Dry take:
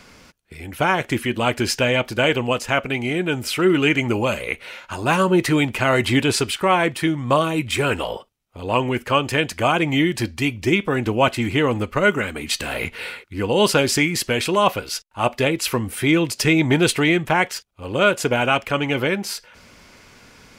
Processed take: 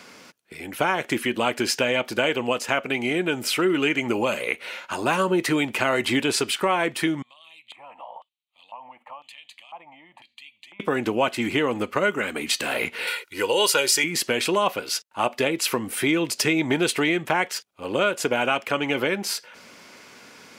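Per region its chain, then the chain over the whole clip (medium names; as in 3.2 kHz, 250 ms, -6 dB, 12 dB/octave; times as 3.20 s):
7.22–10.80 s: static phaser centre 1.5 kHz, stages 6 + compression 10:1, threshold -32 dBFS + LFO band-pass square 1 Hz 860–4100 Hz
13.07–14.04 s: tilt EQ +2.5 dB/octave + comb 2.1 ms, depth 59%
whole clip: high-pass 220 Hz 12 dB/octave; compression 2.5:1, threshold -22 dBFS; trim +1.5 dB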